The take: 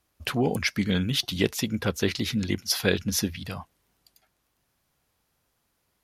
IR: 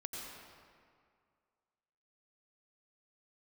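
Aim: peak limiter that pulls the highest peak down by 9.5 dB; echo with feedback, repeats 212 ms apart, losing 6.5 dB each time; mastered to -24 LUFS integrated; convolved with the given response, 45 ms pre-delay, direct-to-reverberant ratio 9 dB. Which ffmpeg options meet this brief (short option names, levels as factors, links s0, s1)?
-filter_complex "[0:a]alimiter=limit=0.168:level=0:latency=1,aecho=1:1:212|424|636|848|1060|1272:0.473|0.222|0.105|0.0491|0.0231|0.0109,asplit=2[s0][s1];[1:a]atrim=start_sample=2205,adelay=45[s2];[s1][s2]afir=irnorm=-1:irlink=0,volume=0.376[s3];[s0][s3]amix=inputs=2:normalize=0,volume=1.41"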